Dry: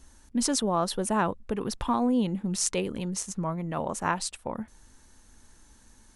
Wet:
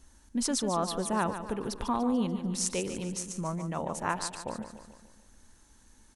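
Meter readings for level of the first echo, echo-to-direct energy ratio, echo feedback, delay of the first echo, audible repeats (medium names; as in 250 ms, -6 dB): -10.0 dB, -8.5 dB, 53%, 146 ms, 5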